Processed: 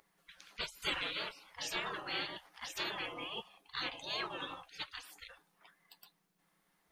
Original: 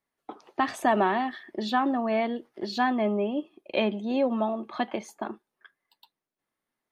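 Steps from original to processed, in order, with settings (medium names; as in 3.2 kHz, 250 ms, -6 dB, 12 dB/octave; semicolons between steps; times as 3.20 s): mains buzz 120 Hz, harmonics 5, -48 dBFS -7 dB/octave; spectral gate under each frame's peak -30 dB weak; trim +10 dB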